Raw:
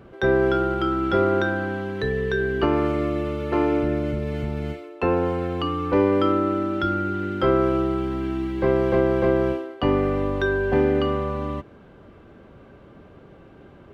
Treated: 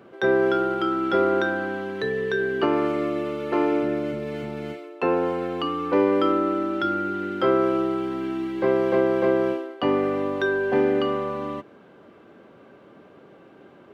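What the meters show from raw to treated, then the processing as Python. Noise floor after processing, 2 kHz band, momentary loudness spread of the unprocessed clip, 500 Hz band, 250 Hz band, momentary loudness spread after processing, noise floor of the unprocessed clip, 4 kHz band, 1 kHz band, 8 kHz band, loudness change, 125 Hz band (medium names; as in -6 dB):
-50 dBFS, 0.0 dB, 7 LU, -0.5 dB, -1.5 dB, 8 LU, -48 dBFS, 0.0 dB, 0.0 dB, no reading, -1.0 dB, -10.0 dB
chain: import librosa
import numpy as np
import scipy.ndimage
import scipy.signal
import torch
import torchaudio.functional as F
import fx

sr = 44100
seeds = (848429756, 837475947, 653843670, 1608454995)

y = scipy.signal.sosfilt(scipy.signal.butter(2, 220.0, 'highpass', fs=sr, output='sos'), x)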